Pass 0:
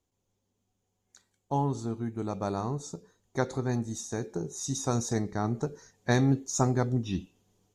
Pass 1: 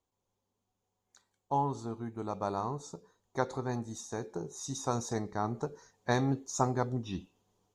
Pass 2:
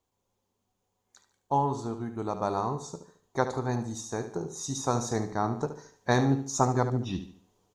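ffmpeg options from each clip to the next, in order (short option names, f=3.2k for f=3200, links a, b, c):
-af "equalizer=f=500:t=o:w=1:g=3,equalizer=f=1k:t=o:w=1:g=9,equalizer=f=4k:t=o:w=1:g=3,volume=-7dB"
-af "aecho=1:1:73|146|219|292:0.282|0.107|0.0407|0.0155,volume=4.5dB"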